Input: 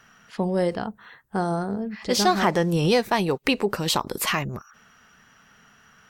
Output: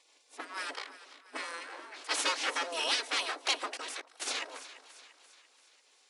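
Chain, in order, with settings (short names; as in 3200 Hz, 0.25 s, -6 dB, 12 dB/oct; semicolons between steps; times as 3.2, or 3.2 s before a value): minimum comb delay 3.1 ms; spectral gate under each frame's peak -15 dB weak; on a send: split-band echo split 920 Hz, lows 0.237 s, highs 0.342 s, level -15 dB; 3.77–4.22 on the sum: level quantiser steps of 20 dB; FFT band-pass 250–11000 Hz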